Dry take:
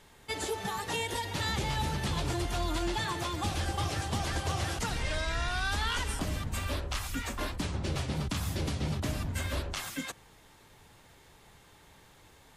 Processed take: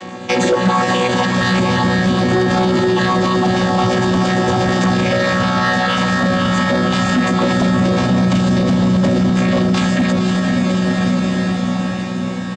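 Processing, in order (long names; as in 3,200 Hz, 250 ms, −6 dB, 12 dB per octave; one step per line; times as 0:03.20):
channel vocoder with a chord as carrier bare fifth, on B2
comb filter 3.7 ms, depth 86%
sine wavefolder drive 7 dB, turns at −20 dBFS
feedback delay with all-pass diffusion 534 ms, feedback 65%, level −5.5 dB
boost into a limiter +27.5 dB
level −7 dB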